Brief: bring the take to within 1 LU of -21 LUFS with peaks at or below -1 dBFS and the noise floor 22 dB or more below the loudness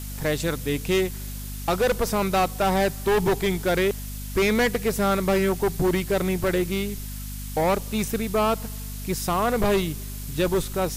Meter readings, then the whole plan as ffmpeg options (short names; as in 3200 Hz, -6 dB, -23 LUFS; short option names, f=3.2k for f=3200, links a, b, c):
hum 50 Hz; harmonics up to 250 Hz; hum level -32 dBFS; noise floor -34 dBFS; noise floor target -47 dBFS; loudness -24.5 LUFS; peak -14.0 dBFS; loudness target -21.0 LUFS
-> -af "bandreject=f=50:t=h:w=6,bandreject=f=100:t=h:w=6,bandreject=f=150:t=h:w=6,bandreject=f=200:t=h:w=6,bandreject=f=250:t=h:w=6"
-af "afftdn=nr=13:nf=-34"
-af "volume=3.5dB"